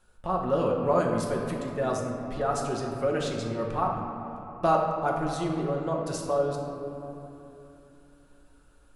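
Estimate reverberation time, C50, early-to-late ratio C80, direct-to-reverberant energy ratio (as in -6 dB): 3.0 s, 2.5 dB, 3.5 dB, -1.5 dB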